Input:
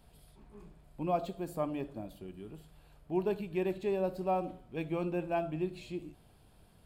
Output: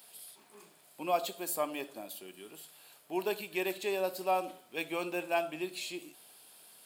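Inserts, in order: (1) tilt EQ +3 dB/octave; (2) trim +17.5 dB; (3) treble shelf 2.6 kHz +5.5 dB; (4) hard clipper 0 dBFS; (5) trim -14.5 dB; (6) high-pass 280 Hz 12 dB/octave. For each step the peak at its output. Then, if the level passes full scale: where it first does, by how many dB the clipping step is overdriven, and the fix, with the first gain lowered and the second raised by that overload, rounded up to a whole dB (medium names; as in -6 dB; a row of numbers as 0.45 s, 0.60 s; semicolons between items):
-21.0 dBFS, -3.5 dBFS, -2.5 dBFS, -2.5 dBFS, -17.0 dBFS, -17.0 dBFS; nothing clips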